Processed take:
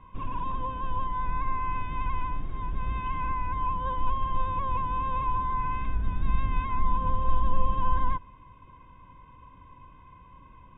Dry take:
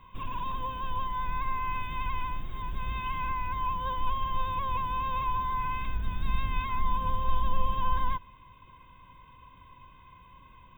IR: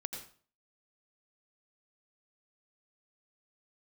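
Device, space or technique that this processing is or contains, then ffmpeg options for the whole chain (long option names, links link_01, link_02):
phone in a pocket: -af "lowpass=3200,equalizer=frequency=290:width_type=o:width=0.26:gain=4,highshelf=frequency=2200:gain=-11.5,volume=3.5dB"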